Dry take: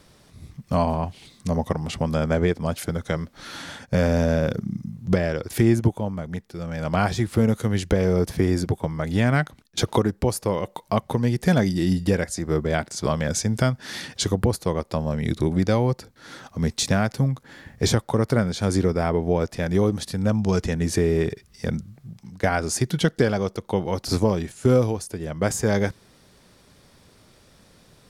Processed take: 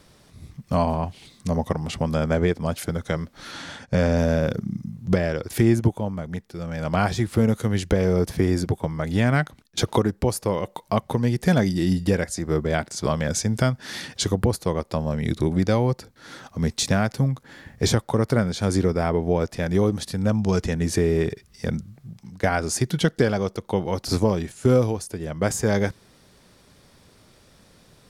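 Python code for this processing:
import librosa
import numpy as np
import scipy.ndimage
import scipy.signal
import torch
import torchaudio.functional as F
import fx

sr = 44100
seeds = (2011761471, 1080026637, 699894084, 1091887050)

y = fx.lowpass(x, sr, hz=8700.0, slope=12, at=(3.51, 4.18))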